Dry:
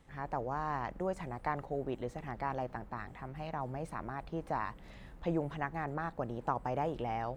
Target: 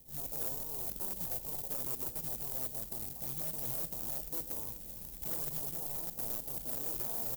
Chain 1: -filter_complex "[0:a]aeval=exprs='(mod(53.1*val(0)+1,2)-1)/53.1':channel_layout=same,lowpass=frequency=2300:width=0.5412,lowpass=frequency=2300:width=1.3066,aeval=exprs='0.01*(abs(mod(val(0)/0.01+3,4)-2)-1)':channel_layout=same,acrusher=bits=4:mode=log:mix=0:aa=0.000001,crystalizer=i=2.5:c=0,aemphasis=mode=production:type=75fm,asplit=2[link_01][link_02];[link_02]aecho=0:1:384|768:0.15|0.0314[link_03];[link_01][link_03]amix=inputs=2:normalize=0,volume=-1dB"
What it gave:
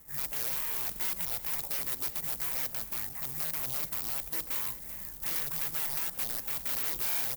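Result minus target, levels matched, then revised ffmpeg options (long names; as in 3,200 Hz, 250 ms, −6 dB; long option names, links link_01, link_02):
2,000 Hz band +10.5 dB
-filter_complex "[0:a]aeval=exprs='(mod(53.1*val(0)+1,2)-1)/53.1':channel_layout=same,lowpass=frequency=710:width=0.5412,lowpass=frequency=710:width=1.3066,aeval=exprs='0.01*(abs(mod(val(0)/0.01+3,4)-2)-1)':channel_layout=same,acrusher=bits=4:mode=log:mix=0:aa=0.000001,crystalizer=i=2.5:c=0,aemphasis=mode=production:type=75fm,asplit=2[link_01][link_02];[link_02]aecho=0:1:384|768:0.15|0.0314[link_03];[link_01][link_03]amix=inputs=2:normalize=0,volume=-1dB"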